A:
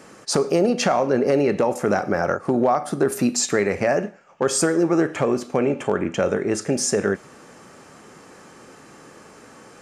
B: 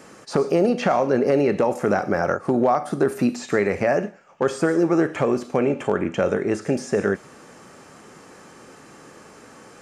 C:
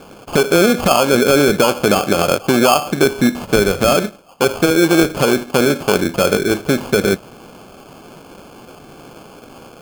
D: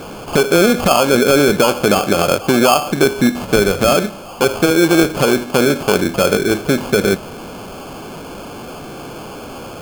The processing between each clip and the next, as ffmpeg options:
-filter_complex "[0:a]acrossover=split=3000[a][b];[b]acompressor=threshold=-40dB:ratio=4:attack=1:release=60[c];[a][c]amix=inputs=2:normalize=0"
-af "acrusher=samples=23:mix=1:aa=0.000001,volume=6.5dB"
-af "aeval=exprs='val(0)+0.5*0.0376*sgn(val(0))':c=same"

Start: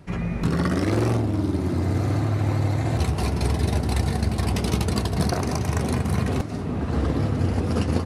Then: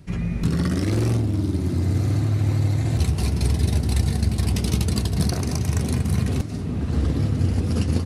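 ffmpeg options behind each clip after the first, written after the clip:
-af "equalizer=f=880:w=0.43:g=-11,volume=3.5dB"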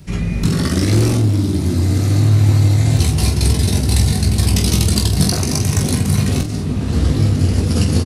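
-filter_complex "[0:a]acrossover=split=600|3100[a][b][c];[c]acontrast=51[d];[a][b][d]amix=inputs=3:normalize=0,aecho=1:1:20|47:0.531|0.376,volume=5dB"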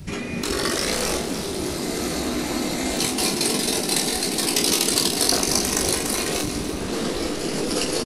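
-af "equalizer=f=66:w=1.5:g=3,afftfilt=real='re*lt(hypot(re,im),0.562)':imag='im*lt(hypot(re,im),0.562)':win_size=1024:overlap=0.75,aecho=1:1:293|586|879|1172|1465|1758:0.282|0.152|0.0822|0.0444|0.024|0.0129,volume=1dB"

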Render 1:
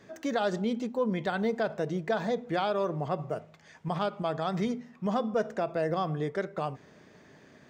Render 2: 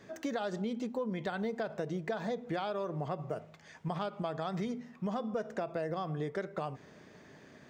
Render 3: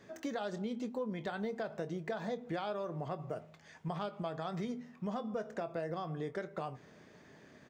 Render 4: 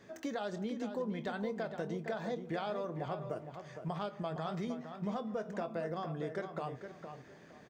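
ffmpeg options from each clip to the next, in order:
-af "acompressor=threshold=-32dB:ratio=6"
-filter_complex "[0:a]asplit=2[a][b];[b]adelay=24,volume=-12dB[c];[a][c]amix=inputs=2:normalize=0,volume=-3dB"
-filter_complex "[0:a]asplit=2[a][b];[b]adelay=462,lowpass=f=3.6k:p=1,volume=-8dB,asplit=2[c][d];[d]adelay=462,lowpass=f=3.6k:p=1,volume=0.25,asplit=2[e][f];[f]adelay=462,lowpass=f=3.6k:p=1,volume=0.25[g];[a][c][e][g]amix=inputs=4:normalize=0"

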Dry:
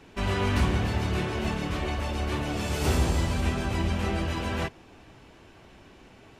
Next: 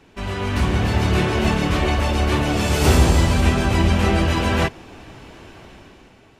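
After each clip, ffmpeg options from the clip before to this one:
-af "dynaudnorm=f=170:g=9:m=11dB"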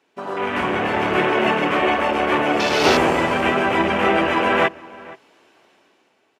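-filter_complex "[0:a]highpass=370,afwtdn=0.0355,asplit=2[a][b];[b]adelay=472.3,volume=-20dB,highshelf=f=4k:g=-10.6[c];[a][c]amix=inputs=2:normalize=0,volume=6dB"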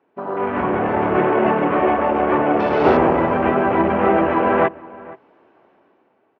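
-af "lowpass=1.2k,volume=3dB"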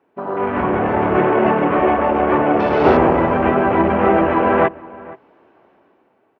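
-af "lowshelf=f=61:g=9.5,volume=1.5dB"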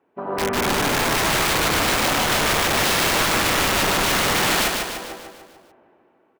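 -filter_complex "[0:a]aeval=exprs='(mod(4.47*val(0)+1,2)-1)/4.47':c=same,asplit=2[a][b];[b]aecho=0:1:148|296|444|592|740|888|1036:0.631|0.328|0.171|0.0887|0.0461|0.024|0.0125[c];[a][c]amix=inputs=2:normalize=0,volume=-3.5dB"

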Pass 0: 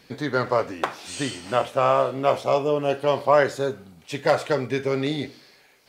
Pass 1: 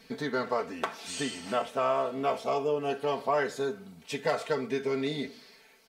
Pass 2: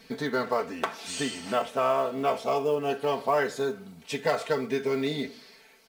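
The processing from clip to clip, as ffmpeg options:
-af "aecho=1:1:4.5:0.83,acompressor=threshold=-30dB:ratio=1.5,volume=-4dB"
-af "acrusher=bits=8:mode=log:mix=0:aa=0.000001,volume=2.5dB"

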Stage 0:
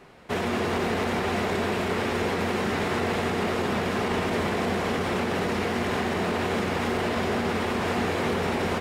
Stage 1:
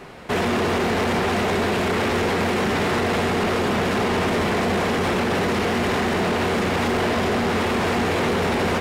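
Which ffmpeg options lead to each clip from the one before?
-filter_complex "[0:a]asplit=2[a][b];[b]alimiter=limit=-23dB:level=0:latency=1,volume=1dB[c];[a][c]amix=inputs=2:normalize=0,asoftclip=type=tanh:threshold=-20.5dB,volume=4dB"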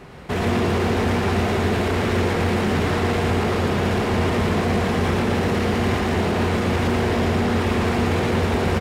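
-af "equalizer=f=71:t=o:w=2.6:g=10.5,aecho=1:1:114:0.708,volume=-4dB"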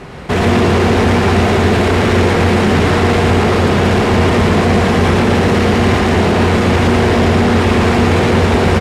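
-filter_complex "[0:a]lowpass=11k,asplit=2[a][b];[b]asoftclip=type=hard:threshold=-25dB,volume=-11dB[c];[a][c]amix=inputs=2:normalize=0,volume=8dB"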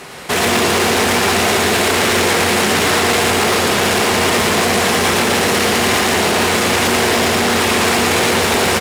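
-af "aemphasis=mode=production:type=riaa"

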